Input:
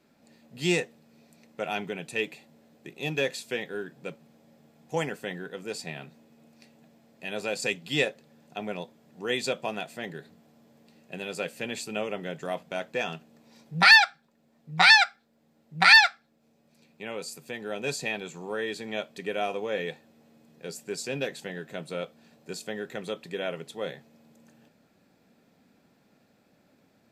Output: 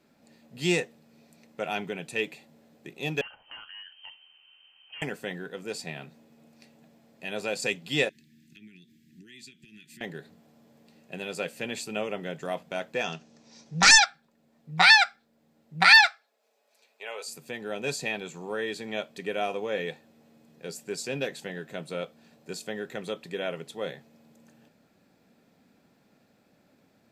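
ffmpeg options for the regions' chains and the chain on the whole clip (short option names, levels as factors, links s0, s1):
-filter_complex "[0:a]asettb=1/sr,asplit=3[s0][s1][s2];[s0]atrim=end=3.214[s3];[s1]atrim=start=3.21:end=5.02,asetpts=PTS-STARTPTS,afade=t=in:d=0.004:c=qsin,afade=t=out:st=1.806:d=0.004:c=qsin,asoftclip=type=hard:threshold=0.0299,acompressor=threshold=0.00891:ratio=12:attack=3.2:release=140:knee=1:detection=peak,lowpass=f=2800:t=q:w=0.5098,lowpass=f=2800:t=q:w=0.6013,lowpass=f=2800:t=q:w=0.9,lowpass=f=2800:t=q:w=2.563,afreqshift=-3300[s4];[s2]atrim=start=5.016[s5];[s3][s4]acrossfade=d=0.004:c1=hsin:c2=qsin[s6];[s6][s5]acrossfade=d=0.004:c1=qsin:c2=hsin,asettb=1/sr,asplit=3[s7][s8][s9];[s7]atrim=end=8.094[s10];[s8]atrim=start=8.09:end=10.01,asetpts=PTS-STARTPTS,afade=t=in:d=0.004:c=qsin,afade=t=out:st=1.916:d=0.004:c=qsin,acompressor=threshold=0.00631:ratio=6:attack=3.2:release=140:knee=1:detection=peak,asuperstop=centerf=780:order=12:qfactor=0.56[s11];[s9]atrim=start=10.006[s12];[s10][s11]acrossfade=d=0.004:c1=hsin:c2=qsin[s13];[s13][s12]acrossfade=d=0.004:c1=qsin:c2=hsin,asettb=1/sr,asplit=3[s14][s15][s16];[s14]atrim=end=13.044[s17];[s15]atrim=start=13.04:end=14.06,asetpts=PTS-STARTPTS,afade=t=in:d=0.004:c=qsin,afade=t=out:st=1.016:d=0.004:c=qsin,aeval=exprs='0.266*(abs(mod(val(0)/0.266+3,4)-2)-1)':c=same,lowpass=f=6000:t=q:w=3.5[s18];[s16]atrim=start=14.056[s19];[s17][s18]acrossfade=d=0.004:c1=hsin:c2=qsin[s20];[s20][s19]acrossfade=d=0.004:c1=qsin:c2=hsin,asettb=1/sr,asplit=3[s21][s22][s23];[s21]atrim=end=15.994[s24];[s22]atrim=start=15.99:end=17.28,asetpts=PTS-STARTPTS,afade=t=in:d=0.004:c=qsin,afade=t=out:st=1.286:d=0.004:c=qsin,highpass=f=490:w=0.5412,highpass=f=490:w=1.3066,aecho=1:1:4.7:0.41,atrim=end_sample=56889[s25];[s23]atrim=start=17.276[s26];[s24][s25]acrossfade=d=0.004:c1=hsin:c2=qsin[s27];[s27][s26]acrossfade=d=0.004:c1=qsin:c2=hsin"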